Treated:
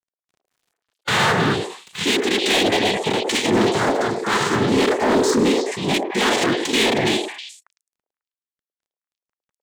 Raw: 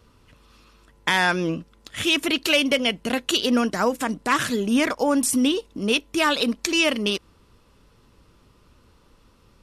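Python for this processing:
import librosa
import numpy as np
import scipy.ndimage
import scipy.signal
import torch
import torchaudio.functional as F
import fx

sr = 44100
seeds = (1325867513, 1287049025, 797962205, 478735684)

y = fx.noise_vocoder(x, sr, seeds[0], bands=6)
y = np.sign(y) * np.maximum(np.abs(y) - 10.0 ** (-49.0 / 20.0), 0.0)
y = fx.echo_stepped(y, sr, ms=106, hz=540.0, octaves=1.4, feedback_pct=70, wet_db=-1.5)
y = np.clip(y, -10.0 ** (-17.5 / 20.0), 10.0 ** (-17.5 / 20.0))
y = fx.hpss(y, sr, part='percussive', gain_db=-9)
y = fx.sustainer(y, sr, db_per_s=110.0)
y = F.gain(torch.from_numpy(y), 8.5).numpy()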